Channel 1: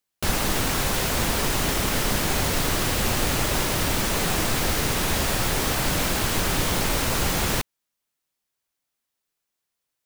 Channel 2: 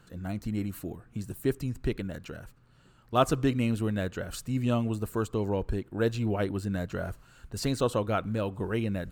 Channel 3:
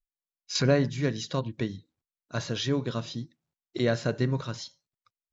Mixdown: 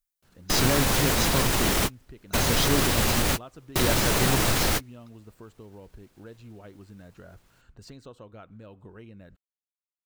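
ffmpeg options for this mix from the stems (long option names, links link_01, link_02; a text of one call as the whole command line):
ffmpeg -i stem1.wav -i stem2.wav -i stem3.wav -filter_complex "[0:a]alimiter=limit=-15.5dB:level=0:latency=1:release=31,volume=2dB[link_01];[1:a]equalizer=frequency=11000:width_type=o:width=0.51:gain=-15,acompressor=threshold=-40dB:ratio=3,adelay=250,volume=-6.5dB[link_02];[2:a]highshelf=frequency=5900:gain=11.5,alimiter=limit=-18dB:level=0:latency=1,volume=1.5dB,asplit=2[link_03][link_04];[link_04]apad=whole_len=443233[link_05];[link_01][link_05]sidechaingate=range=-42dB:threshold=-47dB:ratio=16:detection=peak[link_06];[link_06][link_02][link_03]amix=inputs=3:normalize=0" out.wav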